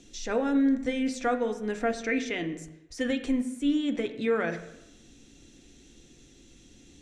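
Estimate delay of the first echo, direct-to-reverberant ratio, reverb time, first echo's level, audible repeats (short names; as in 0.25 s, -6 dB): none, 6.0 dB, 0.90 s, none, none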